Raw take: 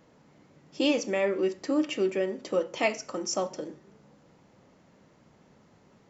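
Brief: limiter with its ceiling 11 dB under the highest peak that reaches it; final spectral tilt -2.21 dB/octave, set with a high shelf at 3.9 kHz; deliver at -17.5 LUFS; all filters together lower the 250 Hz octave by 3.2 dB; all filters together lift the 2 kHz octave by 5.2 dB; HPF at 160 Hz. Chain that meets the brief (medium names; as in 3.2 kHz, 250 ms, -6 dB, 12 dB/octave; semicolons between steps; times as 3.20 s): high-pass 160 Hz; peaking EQ 250 Hz -4 dB; peaking EQ 2 kHz +5 dB; treble shelf 3.9 kHz +4.5 dB; trim +13 dB; peak limiter -6 dBFS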